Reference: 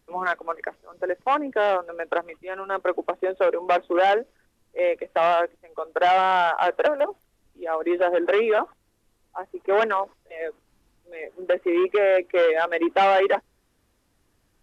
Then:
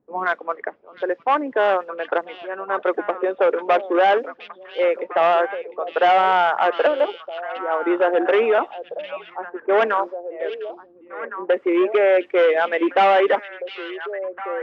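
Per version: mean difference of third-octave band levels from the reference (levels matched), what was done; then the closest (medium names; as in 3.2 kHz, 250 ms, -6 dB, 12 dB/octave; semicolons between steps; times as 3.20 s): 2.5 dB: high-pass 180 Hz 12 dB/octave; level-controlled noise filter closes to 630 Hz, open at -19 dBFS; distance through air 89 m; repeats whose band climbs or falls 706 ms, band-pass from 3.6 kHz, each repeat -1.4 oct, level -6 dB; trim +3.5 dB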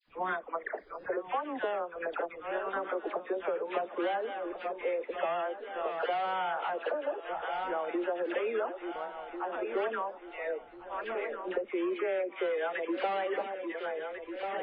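7.0 dB: backward echo that repeats 696 ms, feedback 58%, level -14 dB; compression 5:1, threshold -30 dBFS, peak gain reduction 14.5 dB; phase dispersion lows, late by 84 ms, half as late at 1.3 kHz; MP3 16 kbps 11.025 kHz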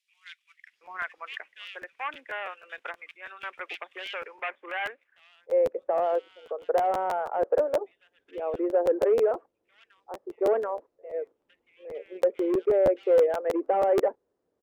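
12.0 dB: treble shelf 3.5 kHz +10 dB; band-pass sweep 2.3 kHz -> 480 Hz, 4.32–4.86 s; bands offset in time highs, lows 730 ms, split 2.6 kHz; crackling interface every 0.16 s, samples 512, repeat, from 0.85 s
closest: first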